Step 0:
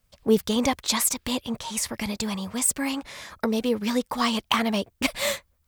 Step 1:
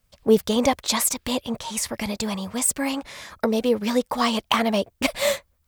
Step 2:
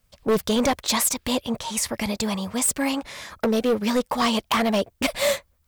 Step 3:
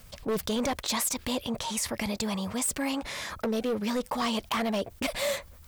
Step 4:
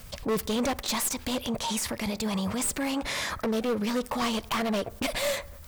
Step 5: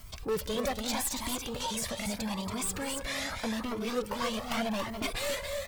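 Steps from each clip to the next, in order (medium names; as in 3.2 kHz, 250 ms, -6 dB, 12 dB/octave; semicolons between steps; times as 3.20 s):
dynamic bell 600 Hz, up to +6 dB, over -41 dBFS, Q 1.6; trim +1 dB
hard clipper -17.5 dBFS, distortion -10 dB; trim +1.5 dB
level flattener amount 50%; trim -9 dB
one-sided wavefolder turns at -26.5 dBFS; peak limiter -27 dBFS, peak gain reduction 8 dB; on a send at -21 dB: reverberation RT60 1.1 s, pre-delay 33 ms; on the sum: trim +5.5 dB
on a send: multi-tap echo 199/280 ms -15/-6 dB; on the sum: Shepard-style flanger rising 0.81 Hz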